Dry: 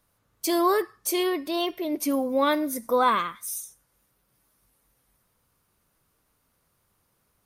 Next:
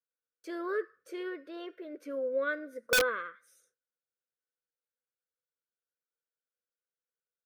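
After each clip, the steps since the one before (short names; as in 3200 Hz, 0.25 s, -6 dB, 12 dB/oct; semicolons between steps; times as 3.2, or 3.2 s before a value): double band-pass 860 Hz, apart 1.6 oct; wrapped overs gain 20 dB; gate with hold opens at -58 dBFS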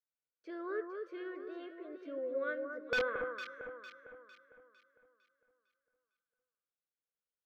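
air absorption 230 m; on a send: echo with dull and thin repeats by turns 0.227 s, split 1500 Hz, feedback 64%, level -4.5 dB; on the sum: gain -5 dB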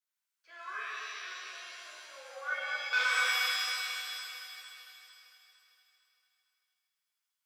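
inverse Chebyshev high-pass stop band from 150 Hz, stop band 80 dB; shimmer reverb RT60 1.8 s, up +7 st, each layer -2 dB, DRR -6.5 dB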